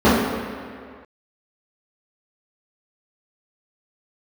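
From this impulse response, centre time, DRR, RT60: 110 ms, −13.5 dB, 2.0 s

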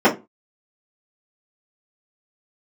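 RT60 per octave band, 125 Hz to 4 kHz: 0.30, 0.30, 0.25, 0.25, 0.20, 0.15 seconds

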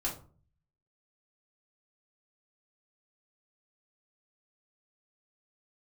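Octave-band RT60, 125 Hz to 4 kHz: 0.85, 0.60, 0.45, 0.40, 0.30, 0.25 seconds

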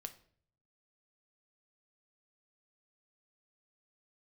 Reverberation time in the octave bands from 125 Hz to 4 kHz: 1.0, 0.75, 0.60, 0.50, 0.45, 0.40 seconds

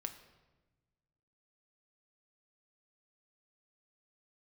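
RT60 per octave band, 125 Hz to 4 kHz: 2.0, 1.7, 1.3, 1.1, 1.0, 0.85 seconds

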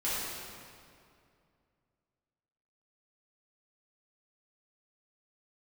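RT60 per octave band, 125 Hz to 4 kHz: 3.0, 2.7, 2.5, 2.3, 2.0, 1.7 seconds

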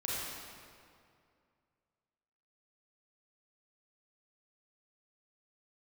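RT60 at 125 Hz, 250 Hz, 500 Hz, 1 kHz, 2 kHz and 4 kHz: 2.6, 2.5, 2.4, 2.3, 2.0, 1.6 seconds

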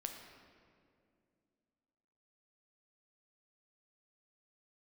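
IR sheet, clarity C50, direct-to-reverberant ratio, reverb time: 5.0 dB, 3.5 dB, 2.3 s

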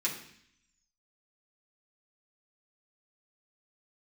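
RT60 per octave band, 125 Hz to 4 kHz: 0.90, 0.85, 0.60, 0.65, 0.80, 0.85 seconds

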